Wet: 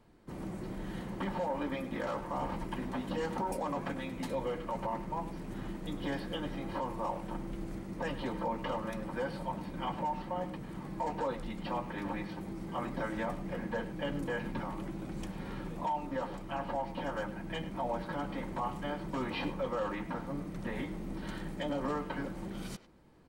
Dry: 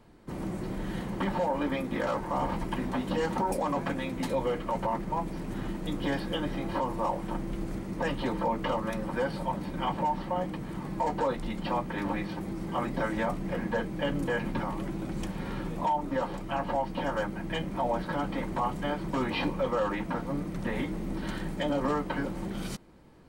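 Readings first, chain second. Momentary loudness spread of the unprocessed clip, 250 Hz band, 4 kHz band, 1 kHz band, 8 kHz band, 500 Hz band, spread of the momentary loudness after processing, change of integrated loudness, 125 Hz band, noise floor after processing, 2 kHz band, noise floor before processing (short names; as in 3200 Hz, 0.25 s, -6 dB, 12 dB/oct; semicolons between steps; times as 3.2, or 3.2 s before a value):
6 LU, -6.0 dB, -6.0 dB, -6.0 dB, -6.0 dB, -6.0 dB, 6 LU, -6.0 dB, -6.0 dB, -44 dBFS, -6.0 dB, -38 dBFS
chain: speakerphone echo 0.1 s, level -12 dB; gain -6 dB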